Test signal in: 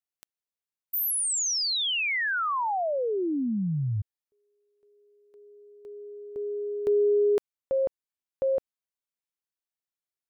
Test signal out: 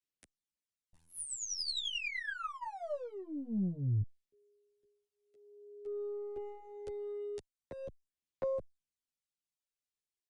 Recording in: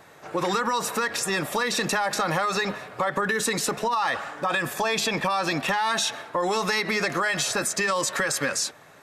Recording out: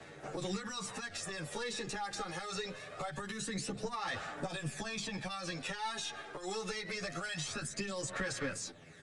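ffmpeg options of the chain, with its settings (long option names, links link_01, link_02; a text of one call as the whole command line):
ffmpeg -i in.wav -filter_complex "[0:a]bandreject=frequency=1000:width=6.1,acrossover=split=150|3600[link_01][link_02][link_03];[link_01]acompressor=threshold=-40dB:ratio=3[link_04];[link_02]acompressor=threshold=-39dB:ratio=4[link_05];[link_03]acompressor=threshold=-44dB:ratio=3[link_06];[link_04][link_05][link_06]amix=inputs=3:normalize=0,acrossover=split=340|480|1800[link_07][link_08][link_09][link_10];[link_09]aeval=exprs='sgn(val(0))*max(abs(val(0))-0.00119,0)':channel_layout=same[link_11];[link_07][link_08][link_11][link_10]amix=inputs=4:normalize=0,aphaser=in_gain=1:out_gain=1:delay=2.5:decay=0.49:speed=0.24:type=sinusoidal,aeval=exprs='(tanh(17.8*val(0)+0.4)-tanh(0.4))/17.8':channel_layout=same,aresample=22050,aresample=44100,asplit=2[link_12][link_13];[link_13]adelay=10,afreqshift=-0.66[link_14];[link_12][link_14]amix=inputs=2:normalize=1,volume=1dB" out.wav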